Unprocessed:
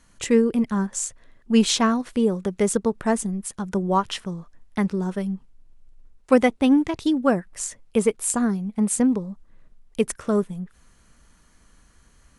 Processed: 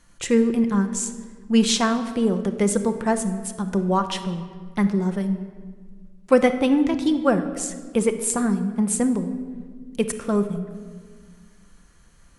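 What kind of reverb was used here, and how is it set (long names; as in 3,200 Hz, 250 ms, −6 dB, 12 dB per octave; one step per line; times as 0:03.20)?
rectangular room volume 2,100 cubic metres, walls mixed, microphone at 0.84 metres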